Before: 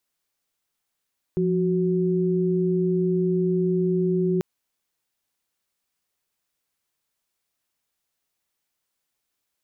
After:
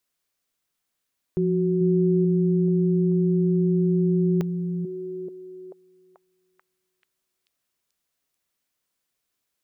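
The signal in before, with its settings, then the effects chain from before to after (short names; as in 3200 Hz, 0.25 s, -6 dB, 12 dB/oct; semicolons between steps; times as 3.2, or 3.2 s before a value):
chord F3/F#4 sine, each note -22 dBFS 3.04 s
notch 840 Hz, Q 12; delay with a stepping band-pass 0.437 s, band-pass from 210 Hz, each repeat 0.7 oct, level -3.5 dB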